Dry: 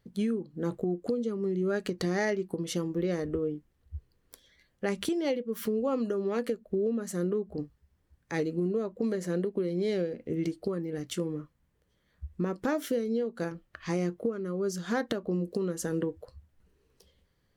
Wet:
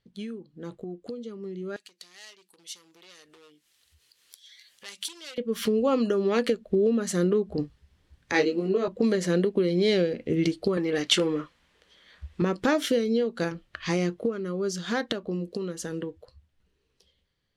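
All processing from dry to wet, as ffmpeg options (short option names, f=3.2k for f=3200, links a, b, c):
-filter_complex "[0:a]asettb=1/sr,asplit=3[a][b][c];[a]atrim=end=1.764[d];[b]atrim=start=1.76:end=5.38,asetpts=PTS-STARTPTS,afade=t=in:d=0.004:c=qsin,afade=t=out:st=3.616:d=0.004:c=qsin,asoftclip=type=hard:threshold=-28dB,aderivative,acompressor=mode=upward:threshold=-49dB:ratio=2.5:attack=3.2:release=140:knee=2.83:detection=peak[e];[c]atrim=start=5.376[f];[d][e]acrossfade=d=0.004:c1=hsin:c2=qsin[g];[g][f]acrossfade=d=0.004:c1=qsin:c2=hsin,asettb=1/sr,asplit=3[h][i][j];[h]atrim=end=8.324[k];[i]atrim=start=8.32:end=8.88,asetpts=PTS-STARTPTS,afade=t=in:d=0.004:c=qsin,afade=t=out:st=0.556:d=0.004:c=qsin,highpass=280,lowpass=6.2k,bandreject=f=3.5k:w=15,asplit=2[l][m];[m]adelay=21,volume=-3dB[n];[l][n]amix=inputs=2:normalize=0,atrim=end_sample=24696[o];[j]atrim=start=8.876[p];[k][o]acrossfade=d=0.004:c1=hsin:c2=qsin[q];[q][p]acrossfade=d=0.004:c1=qsin:c2=hsin,asettb=1/sr,asplit=3[r][s][t];[r]atrim=end=10.774[u];[s]atrim=start=10.77:end=12.42,asetpts=PTS-STARTPTS,afade=t=in:d=0.004:c=qsin,afade=t=out:st=1.646:d=0.004:c=qsin,equalizer=f=120:t=o:w=0.52:g=-8.5,asplit=2[v][w];[w]highpass=f=720:p=1,volume=14dB,asoftclip=type=tanh:threshold=-20dB[x];[v][x]amix=inputs=2:normalize=0,lowpass=f=4.9k:p=1,volume=-6dB[y];[t]atrim=start=12.416[z];[u][y]acrossfade=d=0.004:c1=hsin:c2=qsin[aa];[aa][z]acrossfade=d=0.004:c1=qsin:c2=hsin,dynaudnorm=f=950:g=9:m=14.5dB,lowpass=11k,equalizer=f=3.4k:w=0.89:g=9,volume=-7.5dB"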